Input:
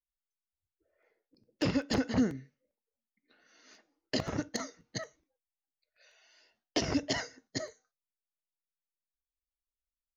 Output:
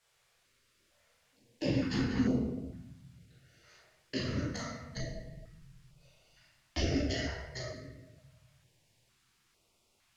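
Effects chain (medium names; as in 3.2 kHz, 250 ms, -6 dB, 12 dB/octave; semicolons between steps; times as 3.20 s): 4.96–6.82 s: octave divider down 2 oct, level +3 dB; added noise white -66 dBFS; distance through air 50 m; reverberation RT60 1.2 s, pre-delay 15 ms, DRR -5.5 dB; step-sequenced notch 2.2 Hz 270–1700 Hz; trim -6 dB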